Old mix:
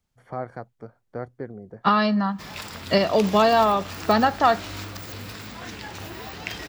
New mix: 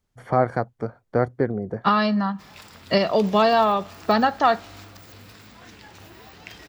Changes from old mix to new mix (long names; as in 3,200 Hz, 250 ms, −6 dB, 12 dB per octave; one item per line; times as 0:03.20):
first voice +12.0 dB
background −9.0 dB